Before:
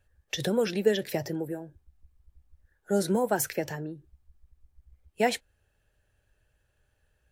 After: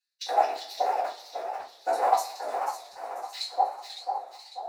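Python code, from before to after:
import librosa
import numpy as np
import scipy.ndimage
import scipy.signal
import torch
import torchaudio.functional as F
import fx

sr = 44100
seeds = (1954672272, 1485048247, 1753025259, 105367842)

y = fx.cycle_switch(x, sr, every=3, mode='inverted')
y = scipy.signal.sosfilt(scipy.signal.butter(4, 310.0, 'highpass', fs=sr, output='sos'), y)
y = fx.peak_eq(y, sr, hz=3200.0, db=-12.0, octaves=0.28)
y = fx.echo_alternate(y, sr, ms=383, hz=920.0, feedback_pct=66, wet_db=-7)
y = 10.0 ** (-18.5 / 20.0) * np.tanh(y / 10.0 ** (-18.5 / 20.0))
y = fx.filter_lfo_highpass(y, sr, shape='square', hz=1.2, low_hz=750.0, high_hz=4200.0, q=5.0)
y = fx.high_shelf(y, sr, hz=4100.0, db=-11.0)
y = fx.rev_double_slope(y, sr, seeds[0], early_s=0.48, late_s=1.9, knee_db=-18, drr_db=-7.0)
y = fx.stretch_vocoder(y, sr, factor=0.64)
y = fx.echo_warbled(y, sr, ms=555, feedback_pct=46, rate_hz=2.8, cents=167, wet_db=-9.5)
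y = y * 10.0 ** (-6.0 / 20.0)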